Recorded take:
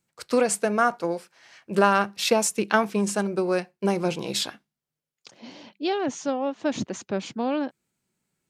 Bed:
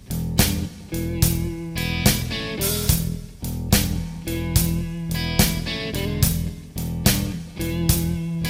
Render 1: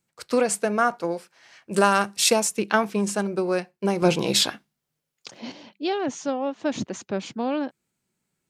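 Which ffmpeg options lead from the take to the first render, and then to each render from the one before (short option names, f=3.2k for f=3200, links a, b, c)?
-filter_complex "[0:a]asettb=1/sr,asplit=3[a][b][c];[a]atrim=end=1.714[d];[b]atrim=start=1.71:end=2.4,asetpts=PTS-STARTPTS,afade=t=in:d=0.004:c=qsin,afade=t=out:st=0.686:d=0.004:c=qsin,equalizer=f=8.6k:w=0.88:g=14[e];[c]atrim=start=2.396[f];[d][e]acrossfade=d=0.004:c1=hsin:c2=qsin[g];[g][f]acrossfade=d=0.004:c1=qsin:c2=hsin,asettb=1/sr,asplit=3[h][i][j];[h]atrim=end=4.024[k];[i]atrim=start=4.02:end=5.52,asetpts=PTS-STARTPTS,afade=t=in:d=0.004:c=qsin,afade=t=out:st=1.496:d=0.004:c=qsin,acontrast=78[l];[j]atrim=start=5.516[m];[k][l]acrossfade=d=0.004:c1=hsin:c2=qsin[n];[n][m]acrossfade=d=0.004:c1=qsin:c2=hsin"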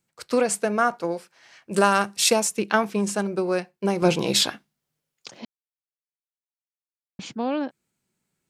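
-filter_complex "[0:a]asplit=3[a][b][c];[a]atrim=end=5.45,asetpts=PTS-STARTPTS,afade=t=out:st=5.446:d=0.004:c=hsin[d];[b]atrim=start=5.45:end=7.19,asetpts=PTS-STARTPTS,volume=0[e];[c]atrim=start=7.19,asetpts=PTS-STARTPTS,afade=t=in:d=0.004:c=hsin[f];[d][e][f]concat=n=3:v=0:a=1"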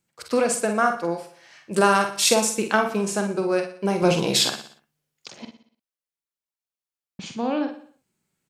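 -filter_complex "[0:a]asplit=2[a][b];[b]adelay=47,volume=-7dB[c];[a][c]amix=inputs=2:normalize=0,asplit=2[d][e];[e]aecho=0:1:60|120|180|240|300:0.266|0.13|0.0639|0.0313|0.0153[f];[d][f]amix=inputs=2:normalize=0"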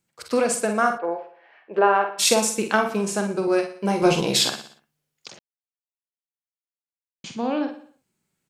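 -filter_complex "[0:a]asplit=3[a][b][c];[a]afade=t=out:st=0.97:d=0.02[d];[b]highpass=430,equalizer=f=430:t=q:w=4:g=6,equalizer=f=750:t=q:w=4:g=5,equalizer=f=1.3k:t=q:w=4:g=-4,equalizer=f=2.1k:t=q:w=4:g=-4,lowpass=f=2.4k:w=0.5412,lowpass=f=2.4k:w=1.3066,afade=t=in:st=0.97:d=0.02,afade=t=out:st=2.18:d=0.02[e];[c]afade=t=in:st=2.18:d=0.02[f];[d][e][f]amix=inputs=3:normalize=0,asettb=1/sr,asplit=3[g][h][i];[g]atrim=end=3.464[j];[h]atrim=start=3.46:end=4.21,asetpts=PTS-STARTPTS,afade=t=in:d=0.004:c=qsin,afade=t=out:st=0.746:d=0.004:c=qsin,asplit=2[k][l];[l]adelay=14,volume=-5dB[m];[k][m]amix=inputs=2:normalize=0,atrim=end_sample=33075[n];[i]atrim=start=4.206[o];[j][n]acrossfade=d=0.004:c1=hsin:c2=qsin[p];[p][o]acrossfade=d=0.004:c1=qsin:c2=hsin,asplit=3[q][r][s];[q]atrim=end=5.39,asetpts=PTS-STARTPTS,afade=t=out:st=5.386:d=0.004:c=hsin[t];[r]atrim=start=5.39:end=7.24,asetpts=PTS-STARTPTS,volume=0[u];[s]atrim=start=7.24,asetpts=PTS-STARTPTS,afade=t=in:d=0.004:c=hsin[v];[t][u][v]concat=n=3:v=0:a=1"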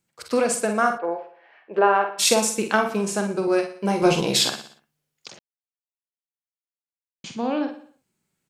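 -af anull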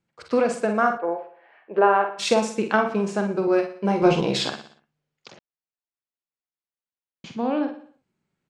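-af "lowpass=8.5k,aemphasis=mode=reproduction:type=75fm"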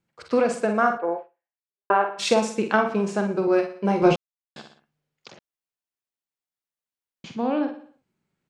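-filter_complex "[0:a]asplit=4[a][b][c][d];[a]atrim=end=1.9,asetpts=PTS-STARTPTS,afade=t=out:st=1.18:d=0.72:c=exp[e];[b]atrim=start=1.9:end=4.16,asetpts=PTS-STARTPTS,afade=t=in:d=0.004:c=hsin,afade=t=out:st=2.256:d=0.004:c=hsin[f];[c]atrim=start=4.16:end=4.56,asetpts=PTS-STARTPTS,volume=0[g];[d]atrim=start=4.56,asetpts=PTS-STARTPTS,afade=t=in:d=0.004:c=hsin[h];[e][f][g][h]concat=n=4:v=0:a=1"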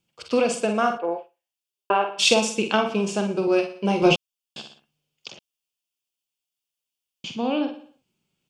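-af "highshelf=f=2.3k:t=q:w=3:g=6.5,bandreject=f=4k:w=10"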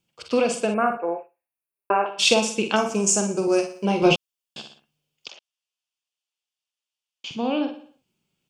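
-filter_complex "[0:a]asettb=1/sr,asplit=3[a][b][c];[a]atrim=end=0.744[d];[b]atrim=start=0.74:end=2.06,asetpts=PTS-STARTPTS,afade=t=in:d=0.004:c=qsin,afade=t=out:st=1.316:d=0.004:c=qsin,asuperstop=centerf=5000:order=20:qfactor=0.81[e];[c]atrim=start=2.056[f];[d][e]acrossfade=d=0.004:c1=hsin:c2=qsin[g];[g][f]acrossfade=d=0.004:c1=qsin:c2=hsin,asettb=1/sr,asplit=3[h][i][j];[h]atrim=end=2.764[k];[i]atrim=start=2.76:end=3.85,asetpts=PTS-STARTPTS,afade=t=in:d=0.004:c=qsin,afade=t=out:st=1.086:d=0.004:c=qsin,highshelf=f=5k:t=q:w=3:g=11.5[l];[j]atrim=start=3.846[m];[k][l]acrossfade=d=0.004:c1=hsin:c2=qsin[n];[n][m]acrossfade=d=0.004:c1=qsin:c2=hsin,asettb=1/sr,asplit=3[o][p][q];[o]atrim=end=5.284[r];[p]atrim=start=5.28:end=7.31,asetpts=PTS-STARTPTS,afade=t=in:d=0.004:c=qsin,afade=t=out:st=2.026:d=0.004:c=qsin,highpass=630,lowpass=7.3k[s];[q]atrim=start=7.306[t];[r][s]acrossfade=d=0.004:c1=hsin:c2=qsin[u];[u][t]acrossfade=d=0.004:c1=qsin:c2=hsin"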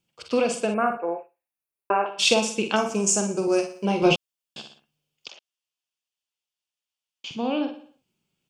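-af "volume=-1.5dB"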